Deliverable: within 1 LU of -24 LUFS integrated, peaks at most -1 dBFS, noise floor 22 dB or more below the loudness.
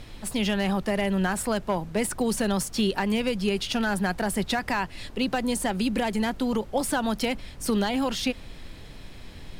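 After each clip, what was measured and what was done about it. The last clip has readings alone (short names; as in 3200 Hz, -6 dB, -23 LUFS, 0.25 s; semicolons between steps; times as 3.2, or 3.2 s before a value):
clipped 0.4%; flat tops at -16.5 dBFS; noise floor -43 dBFS; noise floor target -49 dBFS; loudness -27.0 LUFS; peak -16.5 dBFS; loudness target -24.0 LUFS
-> clip repair -16.5 dBFS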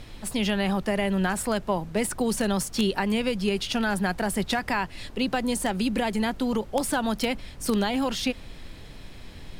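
clipped 0.0%; noise floor -43 dBFS; noise floor target -49 dBFS
-> noise print and reduce 6 dB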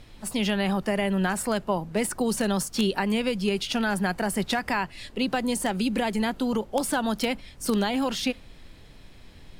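noise floor -49 dBFS; loudness -26.5 LUFS; peak -7.5 dBFS; loudness target -24.0 LUFS
-> gain +2.5 dB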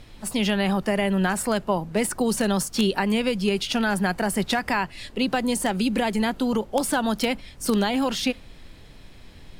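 loudness -24.0 LUFS; peak -5.0 dBFS; noise floor -46 dBFS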